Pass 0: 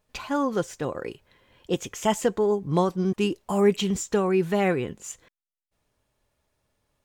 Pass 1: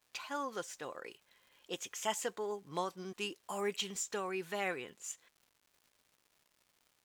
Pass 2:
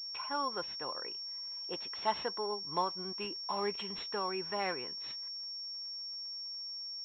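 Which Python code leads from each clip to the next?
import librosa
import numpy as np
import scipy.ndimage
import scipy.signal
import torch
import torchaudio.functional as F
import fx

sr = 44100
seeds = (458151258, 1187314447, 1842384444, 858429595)

y1 = fx.highpass(x, sr, hz=1400.0, slope=6)
y1 = fx.dmg_crackle(y1, sr, seeds[0], per_s=330.0, level_db=-51.0)
y1 = y1 * librosa.db_to_amplitude(-5.5)
y2 = fx.peak_eq(y1, sr, hz=980.0, db=8.5, octaves=0.46)
y2 = fx.pwm(y2, sr, carrier_hz=5500.0)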